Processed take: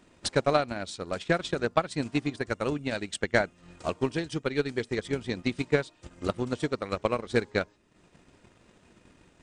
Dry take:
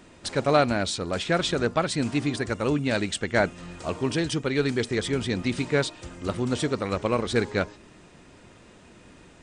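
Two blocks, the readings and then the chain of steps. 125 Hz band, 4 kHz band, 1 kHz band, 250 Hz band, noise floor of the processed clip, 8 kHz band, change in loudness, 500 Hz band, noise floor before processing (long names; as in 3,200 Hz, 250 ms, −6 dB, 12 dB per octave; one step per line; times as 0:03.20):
−5.5 dB, −6.0 dB, −3.0 dB, −5.0 dB, −63 dBFS, −7.0 dB, −3.5 dB, −3.0 dB, −52 dBFS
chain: transient designer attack +11 dB, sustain −8 dB
level −8.5 dB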